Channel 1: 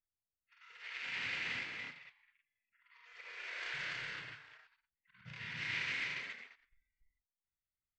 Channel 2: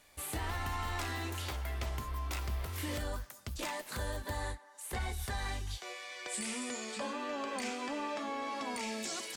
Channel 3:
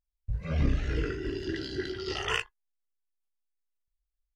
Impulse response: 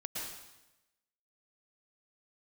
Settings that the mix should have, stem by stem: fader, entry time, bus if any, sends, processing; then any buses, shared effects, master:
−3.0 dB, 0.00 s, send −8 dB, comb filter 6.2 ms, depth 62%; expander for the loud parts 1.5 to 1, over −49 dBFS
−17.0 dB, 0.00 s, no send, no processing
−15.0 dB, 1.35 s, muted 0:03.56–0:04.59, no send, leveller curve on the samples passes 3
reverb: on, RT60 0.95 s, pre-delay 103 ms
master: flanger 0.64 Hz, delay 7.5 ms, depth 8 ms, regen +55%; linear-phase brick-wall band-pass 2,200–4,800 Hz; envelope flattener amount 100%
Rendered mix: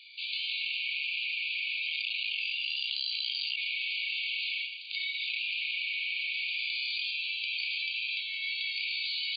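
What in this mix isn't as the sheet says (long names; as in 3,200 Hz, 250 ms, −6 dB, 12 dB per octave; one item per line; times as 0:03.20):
stem 2 −17.0 dB → −23.5 dB
stem 3 −15.0 dB → −6.5 dB
master: missing flanger 0.64 Hz, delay 7.5 ms, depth 8 ms, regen +55%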